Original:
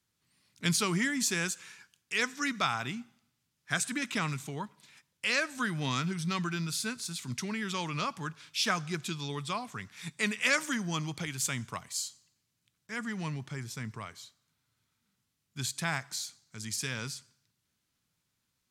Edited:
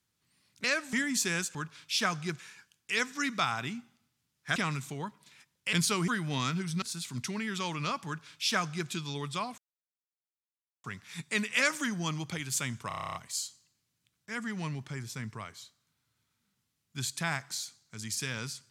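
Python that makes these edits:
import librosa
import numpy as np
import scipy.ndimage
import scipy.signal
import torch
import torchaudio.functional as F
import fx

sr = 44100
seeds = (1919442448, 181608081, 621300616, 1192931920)

y = fx.edit(x, sr, fx.swap(start_s=0.64, length_s=0.35, other_s=5.3, other_length_s=0.29),
    fx.cut(start_s=3.78, length_s=0.35),
    fx.cut(start_s=6.33, length_s=0.63),
    fx.duplicate(start_s=8.2, length_s=0.84, to_s=1.61),
    fx.insert_silence(at_s=9.72, length_s=1.26),
    fx.stutter(start_s=11.76, slice_s=0.03, count=10), tone=tone)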